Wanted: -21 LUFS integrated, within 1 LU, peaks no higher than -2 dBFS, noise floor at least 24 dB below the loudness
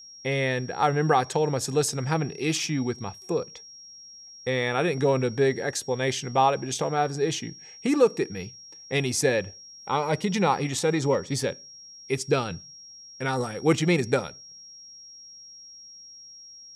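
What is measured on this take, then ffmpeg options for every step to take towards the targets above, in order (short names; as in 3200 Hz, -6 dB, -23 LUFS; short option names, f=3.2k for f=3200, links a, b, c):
steady tone 5600 Hz; tone level -44 dBFS; loudness -26.0 LUFS; peak -8.5 dBFS; loudness target -21.0 LUFS
-> -af "bandreject=f=5.6k:w=30"
-af "volume=5dB"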